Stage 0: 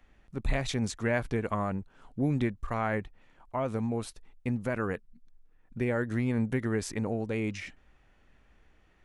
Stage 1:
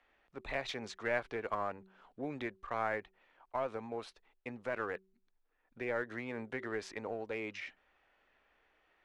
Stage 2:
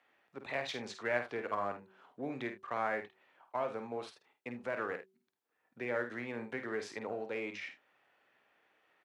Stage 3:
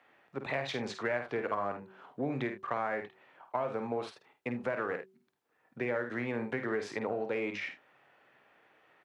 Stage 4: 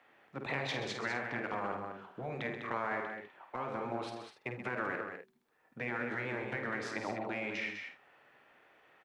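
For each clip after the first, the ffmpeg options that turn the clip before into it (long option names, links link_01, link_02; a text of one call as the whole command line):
ffmpeg -i in.wav -filter_complex "[0:a]acrossover=split=380 4900:gain=0.1 1 0.0891[link_01][link_02][link_03];[link_01][link_02][link_03]amix=inputs=3:normalize=0,bandreject=frequency=190.3:width_type=h:width=4,bandreject=frequency=380.6:width_type=h:width=4,asplit=2[link_04][link_05];[link_05]aeval=exprs='clip(val(0),-1,0.0168)':channel_layout=same,volume=-5.5dB[link_06];[link_04][link_06]amix=inputs=2:normalize=0,volume=-6dB" out.wav
ffmpeg -i in.wav -filter_complex "[0:a]highpass=frequency=110:width=0.5412,highpass=frequency=110:width=1.3066,asplit=2[link_01][link_02];[link_02]aecho=0:1:50|79:0.398|0.15[link_03];[link_01][link_03]amix=inputs=2:normalize=0" out.wav
ffmpeg -i in.wav -af "equalizer=frequency=140:width=4.5:gain=6.5,acompressor=threshold=-38dB:ratio=4,highshelf=frequency=3200:gain=-8,volume=8.5dB" out.wav
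ffmpeg -i in.wav -af "afftfilt=real='re*lt(hypot(re,im),0.112)':imag='im*lt(hypot(re,im),0.112)':win_size=1024:overlap=0.75,aecho=1:1:131.2|201.2:0.316|0.447,asubboost=boost=3:cutoff=55" out.wav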